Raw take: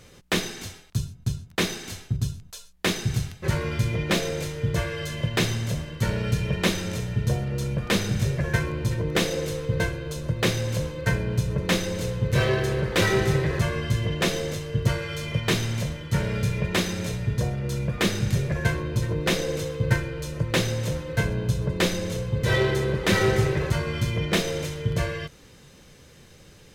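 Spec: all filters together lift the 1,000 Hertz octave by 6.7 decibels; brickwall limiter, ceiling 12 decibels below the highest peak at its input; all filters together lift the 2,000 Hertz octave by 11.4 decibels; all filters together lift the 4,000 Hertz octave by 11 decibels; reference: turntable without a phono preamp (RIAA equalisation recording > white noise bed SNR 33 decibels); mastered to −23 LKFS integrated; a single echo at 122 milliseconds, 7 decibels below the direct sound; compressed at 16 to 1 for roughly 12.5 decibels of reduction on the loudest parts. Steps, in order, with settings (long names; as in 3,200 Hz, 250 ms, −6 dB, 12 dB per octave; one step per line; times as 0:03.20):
parametric band 1,000 Hz +5.5 dB
parametric band 2,000 Hz +8.5 dB
parametric band 4,000 Hz +3 dB
downward compressor 16 to 1, threshold −26 dBFS
brickwall limiter −23 dBFS
RIAA equalisation recording
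single-tap delay 122 ms −7 dB
white noise bed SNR 33 dB
level +7 dB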